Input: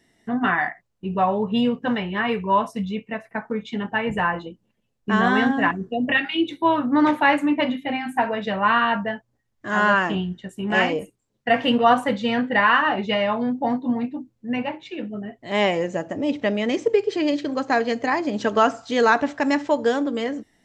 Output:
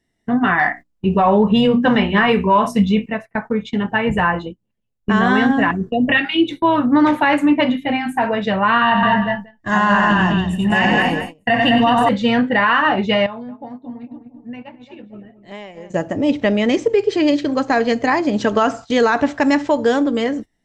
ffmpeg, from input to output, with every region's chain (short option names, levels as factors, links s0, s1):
-filter_complex "[0:a]asettb=1/sr,asplit=3[s0][s1][s2];[s0]atrim=end=0.594[s3];[s1]atrim=start=0.59:end=3.06,asetpts=PTS-STARTPTS,afade=t=in:d=0.004:c=qsin,afade=t=out:st=2.466:d=0.004:c=qsin,bandreject=f=60:t=h:w=6,bandreject=f=120:t=h:w=6,bandreject=f=180:t=h:w=6,bandreject=f=240:t=h:w=6,bandreject=f=300:t=h:w=6,bandreject=f=360:t=h:w=6,acontrast=32,asplit=2[s4][s5];[s5]adelay=29,volume=0.224[s6];[s4][s6]amix=inputs=2:normalize=0,atrim=end_sample=108927[s7];[s2]atrim=start=3.056[s8];[s3][s7]acrossfade=d=0.004:c1=hsin:c2=qsin[s9];[s9][s8]acrossfade=d=0.004:c1=qsin:c2=hsin,asettb=1/sr,asplit=3[s10][s11][s12];[s10]atrim=end=8.824[s13];[s11]atrim=start=8.82:end=12.09,asetpts=PTS-STARTPTS,afade=t=in:d=0.004:c=qsin,afade=t=out:st=3.266:d=0.004:c=qsin,aecho=1:1:1.1:0.49,atrim=end_sample=144207,aecho=1:1:92|207|231|395:0.501|0.668|0.376|0.178,atrim=end_sample=144207[s14];[s12]atrim=start=12.086[s15];[s13][s14]acrossfade=d=0.004:c1=hsin:c2=qsin[s16];[s16][s15]acrossfade=d=0.004:c1=qsin:c2=hsin,asettb=1/sr,asplit=3[s17][s18][s19];[s17]atrim=end=13.264[s20];[s18]atrim=start=13.26:end=15.9,asetpts=PTS-STARTPTS,afade=t=in:d=0.004:c=qsin,afade=t=out:st=2.636:d=0.004:c=qsin,asplit=2[s21][s22];[s22]adelay=225,lowpass=f=1100:p=1,volume=0.335,asplit=2[s23][s24];[s24]adelay=225,lowpass=f=1100:p=1,volume=0.45,asplit=2[s25][s26];[s26]adelay=225,lowpass=f=1100:p=1,volume=0.45,asplit=2[s27][s28];[s28]adelay=225,lowpass=f=1100:p=1,volume=0.45,asplit=2[s29][s30];[s30]adelay=225,lowpass=f=1100:p=1,volume=0.45[s31];[s21][s23][s25][s27][s29][s31]amix=inputs=6:normalize=0,atrim=end_sample=116424,acompressor=threshold=0.0224:ratio=8:attack=3.2:release=140:knee=1:detection=peak[s32];[s19]atrim=start=15.896[s33];[s20][s32]acrossfade=d=0.004:c1=hsin:c2=qsin[s34];[s34][s33]acrossfade=d=0.004:c1=qsin:c2=hsin,agate=range=0.158:threshold=0.0178:ratio=16:detection=peak,lowshelf=f=97:g=11.5,alimiter=level_in=3.35:limit=0.891:release=50:level=0:latency=1,volume=0.562"